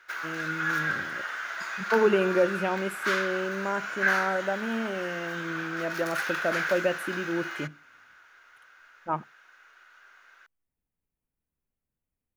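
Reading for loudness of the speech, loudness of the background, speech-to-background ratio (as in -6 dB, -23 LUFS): -30.0 LUFS, -31.0 LUFS, 1.0 dB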